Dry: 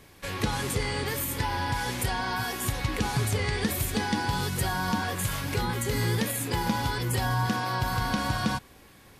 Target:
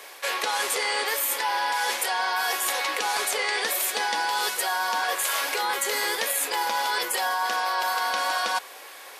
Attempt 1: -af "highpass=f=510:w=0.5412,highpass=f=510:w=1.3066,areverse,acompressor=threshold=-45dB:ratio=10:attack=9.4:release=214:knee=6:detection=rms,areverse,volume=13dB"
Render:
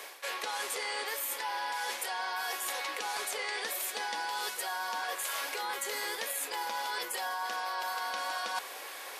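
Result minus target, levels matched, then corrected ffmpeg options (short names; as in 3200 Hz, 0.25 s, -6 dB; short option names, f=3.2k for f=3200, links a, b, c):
compressor: peak gain reduction +9.5 dB
-af "highpass=f=510:w=0.5412,highpass=f=510:w=1.3066,areverse,acompressor=threshold=-34.5dB:ratio=10:attack=9.4:release=214:knee=6:detection=rms,areverse,volume=13dB"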